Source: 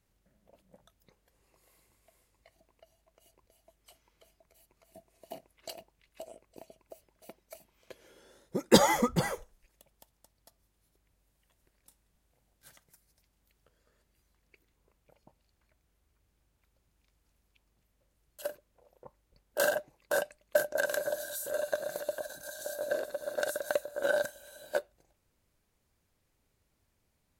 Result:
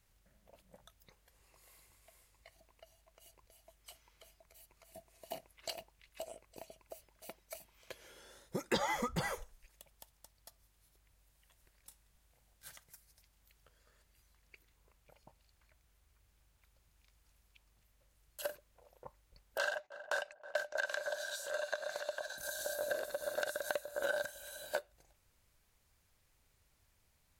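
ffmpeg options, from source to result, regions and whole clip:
-filter_complex "[0:a]asettb=1/sr,asplit=3[s0][s1][s2];[s0]atrim=end=19.584[s3];[s1]atrim=start=19.58:end=22.38,asetpts=PTS-STARTPTS,afade=t=in:d=0.004:c=qsin,afade=t=out:st=2.796:d=0.004:c=qsin,agate=range=0.141:threshold=0.002:ratio=16:release=100:detection=peak,acrossover=split=560 6500:gain=0.2 1 0.0891[s4][s5][s6];[s4][s5][s6]amix=inputs=3:normalize=0,asplit=2[s7][s8];[s8]adelay=320,lowpass=f=820:p=1,volume=0.141,asplit=2[s9][s10];[s10]adelay=320,lowpass=f=820:p=1,volume=0.49,asplit=2[s11][s12];[s12]adelay=320,lowpass=f=820:p=1,volume=0.49,asplit=2[s13][s14];[s14]adelay=320,lowpass=f=820:p=1,volume=0.49[s15];[s7][s9][s11][s13][s15]amix=inputs=5:normalize=0,atrim=end_sample=123480[s16];[s2]atrim=start=22.376[s17];[s3][s16]acrossfade=d=0.004:c1=hsin:c2=qsin[s18];[s18][s17]acrossfade=d=0.004:c1=qsin:c2=hsin,acrossover=split=5200[s19][s20];[s20]acompressor=threshold=0.00501:ratio=4:attack=1:release=60[s21];[s19][s21]amix=inputs=2:normalize=0,equalizer=f=280:w=0.54:g=-9,acompressor=threshold=0.0112:ratio=3,volume=1.68"

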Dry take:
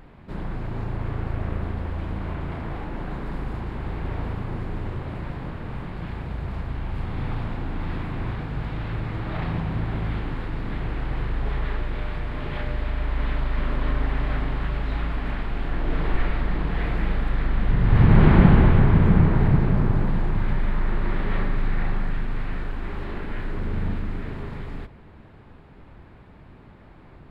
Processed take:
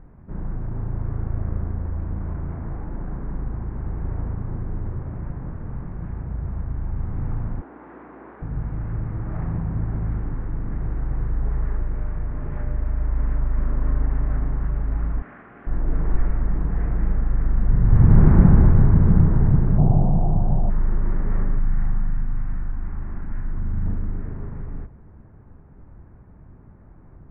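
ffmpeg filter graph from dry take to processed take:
-filter_complex "[0:a]asettb=1/sr,asplit=3[s0][s1][s2];[s0]atrim=end=7.614[s3];[s1]atrim=start=7.61:end=8.42,asetpts=PTS-STARTPTS,afade=t=in:d=0.004:c=qsin,afade=t=out:st=0.806:d=0.004:c=qsin,highpass=f=310:w=0.5412,highpass=f=310:w=1.3066,aeval=exprs='val(0)+0.00112*(sin(2*PI*60*n/s)+sin(2*PI*2*60*n/s)/2+sin(2*PI*3*60*n/s)/3+sin(2*PI*4*60*n/s)/4+sin(2*PI*5*60*n/s)/5)':c=same[s4];[s2]atrim=start=8.416[s5];[s3][s4]acrossfade=d=0.004:c1=hsin:c2=qsin[s6];[s6][s5]acrossfade=d=0.004:c1=qsin:c2=hsin,asettb=1/sr,asplit=3[s7][s8][s9];[s7]atrim=end=15.224[s10];[s8]atrim=start=15.22:end=15.67,asetpts=PTS-STARTPTS,afade=t=in:d=0.004:c=qsin,afade=t=out:st=0.446:d=0.004:c=qsin,highpass=250,lowpass=3000,tiltshelf=f=1200:g=-6.5,bandreject=f=910:w=7.4[s11];[s9]atrim=start=15.666[s12];[s10][s11]acrossfade=d=0.004:c1=hsin:c2=qsin[s13];[s13][s12]acrossfade=d=0.004:c1=qsin:c2=hsin,asettb=1/sr,asplit=3[s14][s15][s16];[s14]atrim=end=19.784[s17];[s15]atrim=start=19.78:end=20.7,asetpts=PTS-STARTPTS,afade=t=in:d=0.004:c=qsin,afade=t=out:st=0.916:d=0.004:c=qsin,lowpass=f=720:t=q:w=7.6,equalizer=f=150:t=o:w=0.75:g=7[s18];[s16]atrim=start=20.696[s19];[s17][s18]acrossfade=d=0.004:c1=hsin:c2=qsin[s20];[s20][s19]acrossfade=d=0.004:c1=qsin:c2=hsin,asettb=1/sr,asplit=3[s21][s22][s23];[s21]atrim=end=21.594[s24];[s22]atrim=start=21.59:end=23.86,asetpts=PTS-STARTPTS,afade=t=in:d=0.004:c=qsin,afade=t=out:st=2.266:d=0.004:c=qsin,lowpass=3700,equalizer=f=450:w=1.8:g=-12[s25];[s23]atrim=start=23.856[s26];[s24][s25]acrossfade=d=0.004:c1=hsin:c2=qsin[s27];[s27][s26]acrossfade=d=0.004:c1=qsin:c2=hsin,lowpass=f=1700:w=0.5412,lowpass=f=1700:w=1.3066,lowshelf=f=250:g=10.5,volume=0.447"

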